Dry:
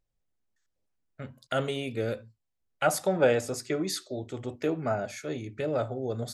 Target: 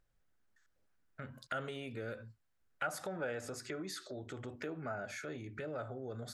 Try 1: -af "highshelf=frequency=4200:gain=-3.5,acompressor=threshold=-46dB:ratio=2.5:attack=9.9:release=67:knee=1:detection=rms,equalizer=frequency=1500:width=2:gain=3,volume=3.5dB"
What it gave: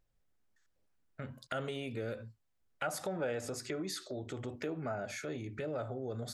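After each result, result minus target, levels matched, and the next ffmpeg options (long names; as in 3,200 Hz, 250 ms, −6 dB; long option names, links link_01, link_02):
downward compressor: peak gain reduction −4 dB; 2,000 Hz band −3.5 dB
-af "highshelf=frequency=4200:gain=-3.5,acompressor=threshold=-53dB:ratio=2.5:attack=9.9:release=67:knee=1:detection=rms,equalizer=frequency=1500:width=2:gain=3,volume=3.5dB"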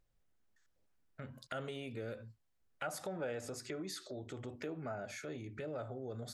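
2,000 Hz band −3.5 dB
-af "highshelf=frequency=4200:gain=-3.5,acompressor=threshold=-53dB:ratio=2.5:attack=9.9:release=67:knee=1:detection=rms,equalizer=frequency=1500:width=2:gain=9,volume=3.5dB"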